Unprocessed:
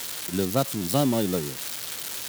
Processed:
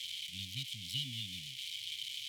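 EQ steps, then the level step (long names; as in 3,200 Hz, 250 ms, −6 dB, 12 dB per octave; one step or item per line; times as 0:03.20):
formant filter i
elliptic band-stop filter 110–2,900 Hz, stop band 50 dB
+12.0 dB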